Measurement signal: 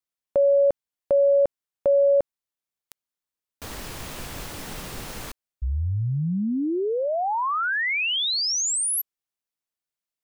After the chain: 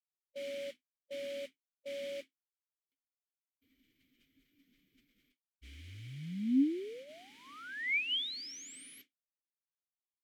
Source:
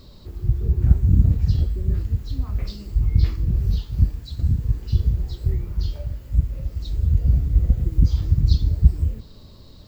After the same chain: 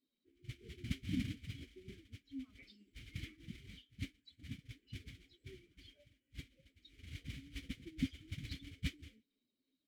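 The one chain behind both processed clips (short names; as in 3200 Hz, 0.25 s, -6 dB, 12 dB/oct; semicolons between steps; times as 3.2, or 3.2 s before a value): per-bin expansion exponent 2; modulation noise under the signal 15 dB; vowel filter i; gain +2 dB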